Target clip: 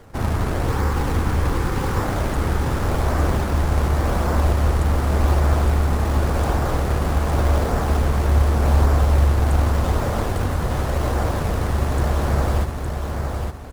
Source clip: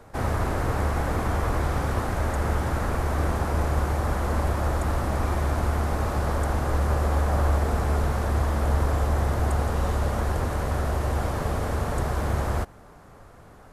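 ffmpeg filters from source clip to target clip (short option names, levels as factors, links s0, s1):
-filter_complex "[0:a]asplit=2[s0][s1];[s1]acrusher=samples=33:mix=1:aa=0.000001:lfo=1:lforange=52.8:lforate=0.87,volume=0.708[s2];[s0][s2]amix=inputs=2:normalize=0,asettb=1/sr,asplit=3[s3][s4][s5];[s3]atrim=end=0.684[s6];[s4]atrim=start=0.68:end=2,asetpts=PTS-STARTPTS,afade=t=in:d=0.004:c=qsin,afade=t=out:st=1.316:d=0.004:c=qsin,asuperstop=centerf=650:order=4:qfactor=3.2[s7];[s5]atrim=start=1.996[s8];[s6][s7]acrossfade=d=0.004:c1=hsin:c2=qsin[s9];[s9][s8]acrossfade=d=0.004:c1=qsin:c2=hsin,aecho=1:1:862|1724|2586|3448:0.562|0.197|0.0689|0.0241"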